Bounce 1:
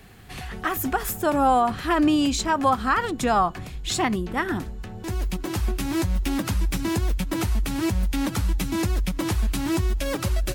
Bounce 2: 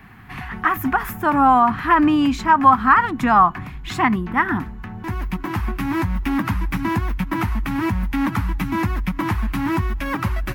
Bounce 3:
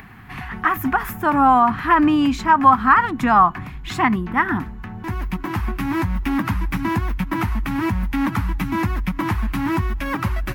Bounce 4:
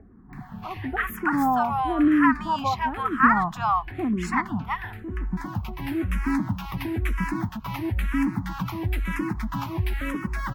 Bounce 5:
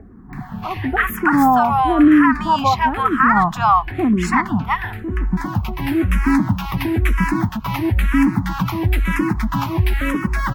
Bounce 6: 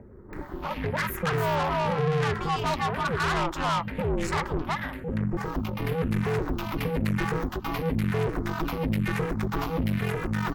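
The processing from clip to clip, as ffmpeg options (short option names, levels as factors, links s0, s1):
-af "equalizer=f=125:t=o:w=1:g=5,equalizer=f=250:t=o:w=1:g=8,equalizer=f=500:t=o:w=1:g=-10,equalizer=f=1000:t=o:w=1:g=12,equalizer=f=2000:t=o:w=1:g=8,equalizer=f=4000:t=o:w=1:g=-5,equalizer=f=8000:t=o:w=1:g=-11,volume=0.891"
-af "acompressor=mode=upward:threshold=0.0126:ratio=2.5"
-filter_complex "[0:a]acrossover=split=840[s0][s1];[s1]adelay=330[s2];[s0][s2]amix=inputs=2:normalize=0,asplit=2[s3][s4];[s4]afreqshift=-1[s5];[s3][s5]amix=inputs=2:normalize=1,volume=0.794"
-af "alimiter=level_in=4.22:limit=0.891:release=50:level=0:latency=1,volume=0.668"
-af "aeval=exprs='(tanh(10*val(0)+0.5)-tanh(0.5))/10':c=same,aeval=exprs='val(0)*sin(2*PI*160*n/s)':c=same,volume=0.891"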